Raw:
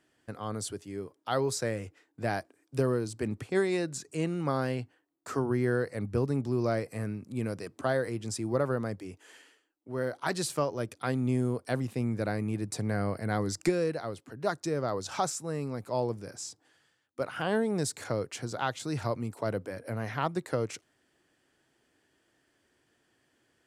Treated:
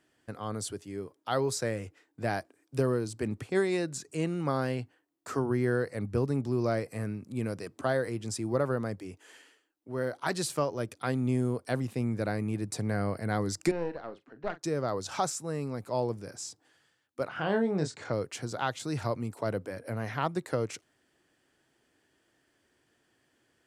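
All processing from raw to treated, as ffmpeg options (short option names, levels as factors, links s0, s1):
-filter_complex "[0:a]asettb=1/sr,asplit=3[s0][s1][s2];[s0]atrim=end=13.714[s3];[s1]atrim=start=13.71:end=14.63,asetpts=PTS-STARTPTS,afade=t=in:d=0.004:c=qsin,afade=t=out:st=0.916:d=0.004:c=qsin,highpass=230,lowpass=2800,aeval=exprs='(tanh(14.1*val(0)+0.8)-tanh(0.8))/14.1':c=same,asplit=2[s4][s5];[s5]adelay=41,volume=0.224[s6];[s4][s6]amix=inputs=2:normalize=0,atrim=end_sample=40572[s7];[s2]atrim=start=14.626[s8];[s3][s7]acrossfade=d=0.004:c1=hsin:c2=qsin[s9];[s9][s8]acrossfade=d=0.004:c1=qsin:c2=hsin,asettb=1/sr,asplit=3[s10][s11][s12];[s10]atrim=end=17.284[s13];[s11]atrim=start=17.28:end=18.13,asetpts=PTS-STARTPTS,afade=t=in:d=0.004:c=qsin,afade=t=out:st=0.846:d=0.004:c=qsin,lowpass=f=7800:w=0.5412,lowpass=f=7800:w=1.3066,aemphasis=mode=reproduction:type=50kf,asplit=2[s14][s15];[s15]adelay=26,volume=0.447[s16];[s14][s16]amix=inputs=2:normalize=0,atrim=end_sample=37485[s17];[s12]atrim=start=18.126[s18];[s13][s17]acrossfade=d=0.004:c1=hsin:c2=qsin[s19];[s19][s18]acrossfade=d=0.004:c1=qsin:c2=hsin"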